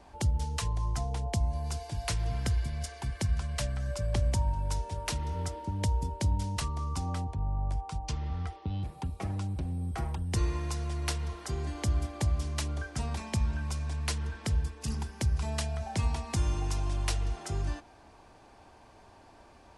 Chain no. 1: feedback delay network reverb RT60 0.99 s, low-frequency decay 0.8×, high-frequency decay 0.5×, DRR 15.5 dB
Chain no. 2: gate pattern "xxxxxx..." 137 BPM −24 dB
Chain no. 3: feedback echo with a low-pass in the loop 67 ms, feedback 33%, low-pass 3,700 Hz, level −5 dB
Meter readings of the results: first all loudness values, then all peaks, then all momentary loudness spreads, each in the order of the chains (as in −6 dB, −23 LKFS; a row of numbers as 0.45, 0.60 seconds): −33.0, −34.5, −31.5 LKFS; −17.5, −18.0, −16.0 dBFS; 6, 11, 6 LU